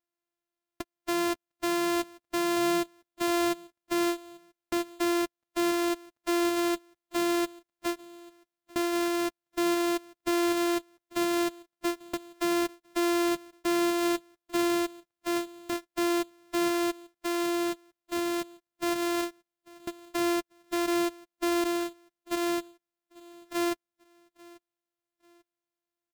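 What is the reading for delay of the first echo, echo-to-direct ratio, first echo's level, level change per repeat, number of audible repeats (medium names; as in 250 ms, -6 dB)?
842 ms, -22.5 dB, -23.0 dB, -9.5 dB, 2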